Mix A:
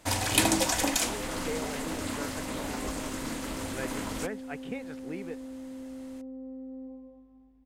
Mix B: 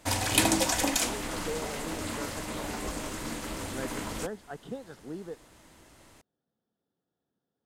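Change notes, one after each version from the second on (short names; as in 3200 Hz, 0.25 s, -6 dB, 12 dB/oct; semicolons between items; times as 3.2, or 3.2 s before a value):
speech: add Butterworth band-stop 2300 Hz, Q 1.4; second sound: muted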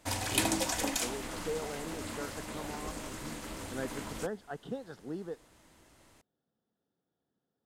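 background -5.5 dB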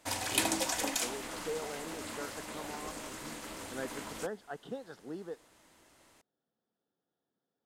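master: add low shelf 180 Hz -11 dB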